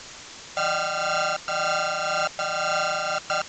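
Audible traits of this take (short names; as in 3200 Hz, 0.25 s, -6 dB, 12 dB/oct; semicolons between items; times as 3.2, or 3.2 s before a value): a buzz of ramps at a fixed pitch in blocks of 32 samples; tremolo triangle 1.9 Hz, depth 40%; a quantiser's noise floor 6-bit, dither triangular; A-law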